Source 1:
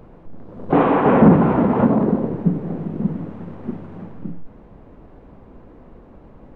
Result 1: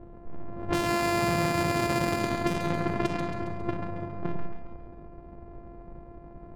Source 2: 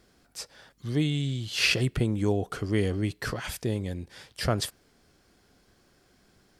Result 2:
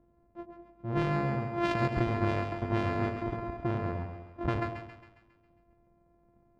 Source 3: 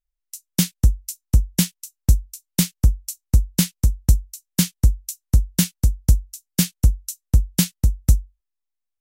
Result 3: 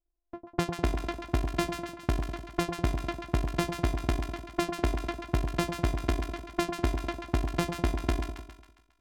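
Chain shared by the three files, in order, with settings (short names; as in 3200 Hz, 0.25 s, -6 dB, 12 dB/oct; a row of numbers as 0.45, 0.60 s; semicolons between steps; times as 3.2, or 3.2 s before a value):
sample sorter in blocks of 128 samples; low-pass opened by the level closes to 650 Hz, open at -13.5 dBFS; high shelf 9600 Hz -5.5 dB; limiter -9.5 dBFS; compressor 6:1, threshold -23 dBFS; on a send: split-band echo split 880 Hz, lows 0.1 s, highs 0.136 s, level -6 dB; on the sum: gain -1.5 dB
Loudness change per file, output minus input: -11.5, -3.5, -10.5 LU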